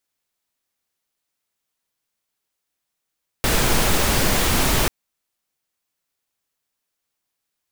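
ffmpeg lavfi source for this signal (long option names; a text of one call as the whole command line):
ffmpeg -f lavfi -i "anoisesrc=color=pink:amplitude=0.646:duration=1.44:sample_rate=44100:seed=1" out.wav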